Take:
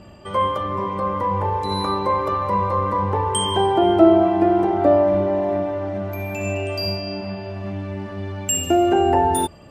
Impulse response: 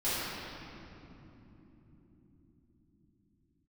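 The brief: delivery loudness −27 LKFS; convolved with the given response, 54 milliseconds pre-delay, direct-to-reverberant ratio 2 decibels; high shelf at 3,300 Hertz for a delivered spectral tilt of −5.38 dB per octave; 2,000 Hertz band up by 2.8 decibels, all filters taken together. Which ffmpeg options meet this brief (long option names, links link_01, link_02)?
-filter_complex "[0:a]equalizer=frequency=2000:width_type=o:gain=5.5,highshelf=frequency=3300:gain=-4.5,asplit=2[link_01][link_02];[1:a]atrim=start_sample=2205,adelay=54[link_03];[link_02][link_03]afir=irnorm=-1:irlink=0,volume=-11.5dB[link_04];[link_01][link_04]amix=inputs=2:normalize=0,volume=-9.5dB"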